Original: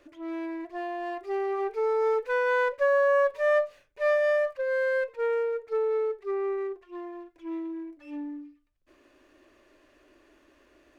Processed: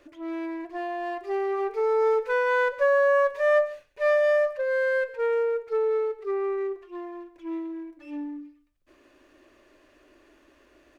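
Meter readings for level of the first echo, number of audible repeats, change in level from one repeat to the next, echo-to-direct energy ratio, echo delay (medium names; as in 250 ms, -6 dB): -17.0 dB, 1, no regular repeats, -17.0 dB, 136 ms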